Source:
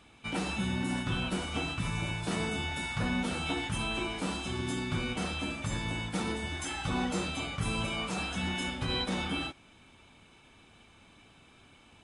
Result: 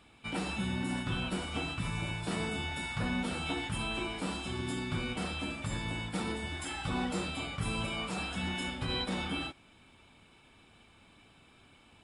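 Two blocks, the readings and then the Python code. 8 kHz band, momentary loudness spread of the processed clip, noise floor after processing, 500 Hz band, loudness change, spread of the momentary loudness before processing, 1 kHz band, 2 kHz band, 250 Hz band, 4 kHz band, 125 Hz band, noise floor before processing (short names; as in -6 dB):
-3.5 dB, 3 LU, -61 dBFS, -2.0 dB, -2.0 dB, 3 LU, -2.0 dB, -2.0 dB, -2.0 dB, -2.0 dB, -2.0 dB, -59 dBFS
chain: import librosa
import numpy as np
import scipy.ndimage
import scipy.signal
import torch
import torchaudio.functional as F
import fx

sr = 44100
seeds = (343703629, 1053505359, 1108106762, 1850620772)

y = fx.notch(x, sr, hz=6200.0, q=7.5)
y = y * 10.0 ** (-2.0 / 20.0)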